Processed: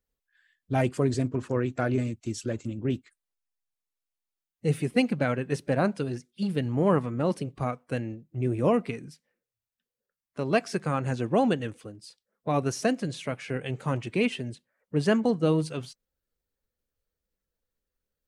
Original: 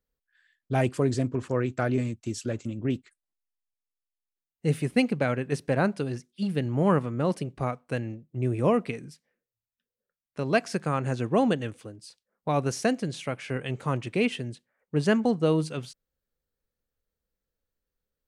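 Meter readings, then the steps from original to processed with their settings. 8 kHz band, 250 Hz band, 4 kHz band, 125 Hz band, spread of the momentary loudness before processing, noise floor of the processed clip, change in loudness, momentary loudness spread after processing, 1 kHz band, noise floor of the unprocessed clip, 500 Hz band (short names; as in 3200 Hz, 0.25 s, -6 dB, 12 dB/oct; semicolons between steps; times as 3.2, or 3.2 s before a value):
-0.5 dB, 0.0 dB, -0.5 dB, -0.5 dB, 11 LU, under -85 dBFS, -0.5 dB, 11 LU, -0.5 dB, under -85 dBFS, 0.0 dB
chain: bin magnitudes rounded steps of 15 dB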